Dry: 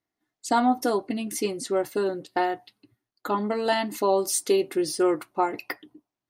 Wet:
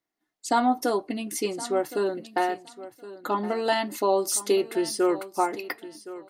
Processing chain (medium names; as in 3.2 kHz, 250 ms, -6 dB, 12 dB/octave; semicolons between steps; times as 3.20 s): peaking EQ 78 Hz -14.5 dB 1.3 oct; feedback delay 1067 ms, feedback 18%, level -16 dB